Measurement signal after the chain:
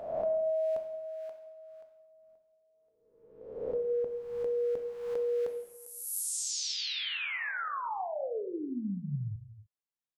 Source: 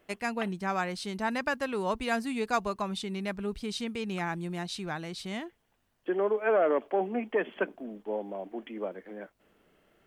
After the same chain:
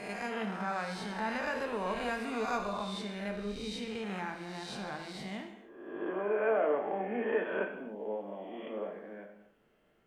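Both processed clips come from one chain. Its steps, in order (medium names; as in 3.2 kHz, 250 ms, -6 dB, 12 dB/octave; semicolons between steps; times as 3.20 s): reverse spectral sustain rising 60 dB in 1.12 s; treble shelf 4.1 kHz -6 dB; gated-style reverb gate 320 ms falling, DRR 3.5 dB; trim -8 dB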